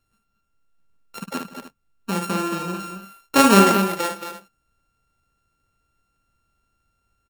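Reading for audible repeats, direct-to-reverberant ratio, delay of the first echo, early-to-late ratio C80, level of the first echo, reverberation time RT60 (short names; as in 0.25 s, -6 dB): 4, none, 56 ms, none, -6.5 dB, none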